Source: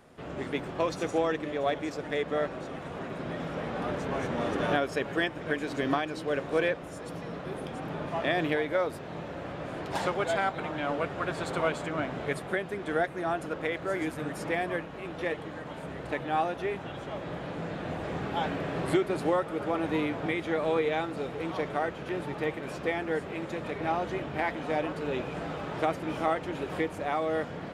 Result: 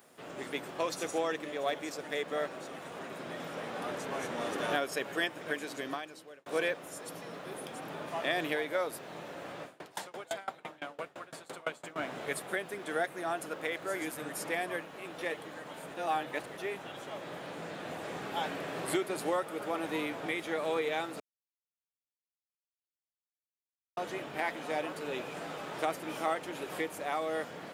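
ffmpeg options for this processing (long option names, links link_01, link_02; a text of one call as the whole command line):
ffmpeg -i in.wav -filter_complex "[0:a]asettb=1/sr,asplit=3[link_01][link_02][link_03];[link_01]atrim=end=9.634[link_04];[link_02]atrim=start=9.63:end=11.96,asetpts=PTS-STARTPTS,afade=type=in:duration=0.004:curve=qsin,afade=type=out:start_time=2.326:duration=0.004:curve=qsin,aeval=exprs='val(0)*pow(10,-27*if(lt(mod(5.9*n/s,1),2*abs(5.9)/1000),1-mod(5.9*n/s,1)/(2*abs(5.9)/1000),(mod(5.9*n/s,1)-2*abs(5.9)/1000)/(1-2*abs(5.9)/1000))/20)':channel_layout=same[link_05];[link_03]atrim=start=11.956[link_06];[link_04][link_05]acrossfade=duration=0.004:curve1=hsin:curve2=qsin[link_07];[link_07][link_06]acrossfade=duration=0.004:curve1=qsin:curve2=hsin,asplit=6[link_08][link_09][link_10][link_11][link_12][link_13];[link_08]atrim=end=6.46,asetpts=PTS-STARTPTS,afade=type=out:start_time=5.49:duration=0.97[link_14];[link_09]atrim=start=6.46:end=15.942,asetpts=PTS-STARTPTS,afade=type=in:duration=0.004:curve=hsin[link_15];[link_10]atrim=start=15.938:end=16.572,asetpts=PTS-STARTPTS,areverse[link_16];[link_11]atrim=start=16.568:end=21.2,asetpts=PTS-STARTPTS,afade=type=out:start_time=4.628:duration=0.004:curve=hsin[link_17];[link_12]atrim=start=21.2:end=23.97,asetpts=PTS-STARTPTS,volume=0[link_18];[link_13]atrim=start=23.97,asetpts=PTS-STARTPTS,afade=type=in:duration=0.004:curve=hsin[link_19];[link_14][link_15]concat=n=2:v=0:a=1[link_20];[link_20][link_16]acrossfade=duration=0.004:curve1=hsin:curve2=hsin[link_21];[link_17][link_18][link_19]concat=n=3:v=0:a=1[link_22];[link_21][link_22]acrossfade=duration=0.004:curve1=hsin:curve2=hsin,highpass=94,aemphasis=mode=production:type=bsi,volume=-3.5dB" out.wav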